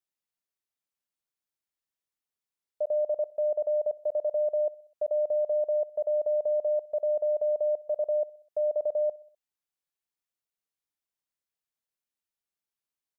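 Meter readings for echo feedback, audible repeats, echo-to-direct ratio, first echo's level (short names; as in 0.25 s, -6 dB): 58%, 3, -21.5 dB, -23.0 dB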